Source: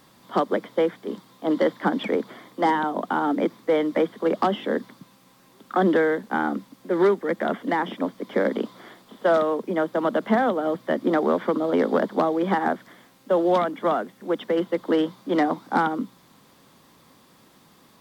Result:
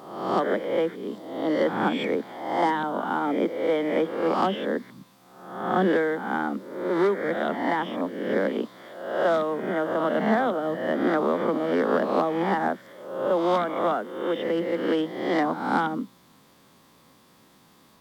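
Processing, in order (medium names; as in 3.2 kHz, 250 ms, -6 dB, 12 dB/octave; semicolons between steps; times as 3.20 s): reverse spectral sustain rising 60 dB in 0.86 s; trim -4 dB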